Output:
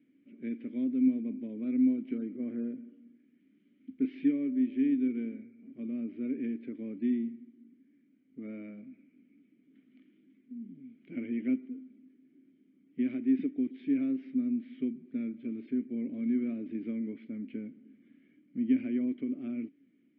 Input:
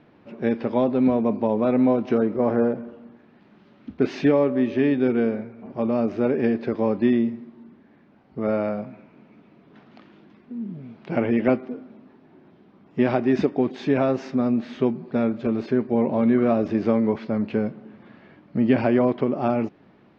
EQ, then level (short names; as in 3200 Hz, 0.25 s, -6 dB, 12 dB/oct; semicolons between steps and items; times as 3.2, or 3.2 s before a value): vowel filter i; air absorption 230 m; -3.0 dB